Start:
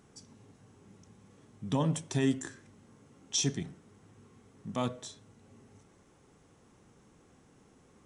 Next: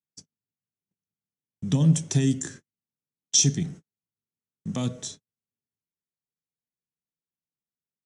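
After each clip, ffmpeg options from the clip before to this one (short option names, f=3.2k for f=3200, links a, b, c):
-filter_complex "[0:a]agate=range=-50dB:threshold=-49dB:ratio=16:detection=peak,equalizer=f=160:t=o:w=0.67:g=7,equalizer=f=1k:t=o:w=0.67:g=-6,equalizer=f=6.3k:t=o:w=0.67:g=7,acrossover=split=310|3000[a][b][c];[b]acompressor=threshold=-40dB:ratio=6[d];[a][d][c]amix=inputs=3:normalize=0,volume=5.5dB"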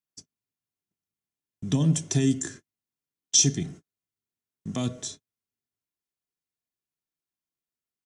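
-af "aecho=1:1:2.9:0.35"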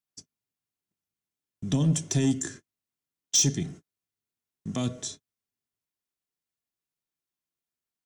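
-af "asoftclip=type=tanh:threshold=-14.5dB"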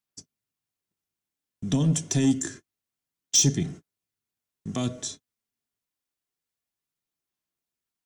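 -af "aphaser=in_gain=1:out_gain=1:delay=4.3:decay=0.2:speed=0.27:type=sinusoidal,volume=1.5dB"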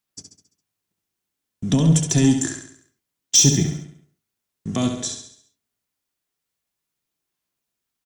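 -af "aecho=1:1:68|136|204|272|340|408:0.447|0.219|0.107|0.0526|0.0258|0.0126,volume=5.5dB"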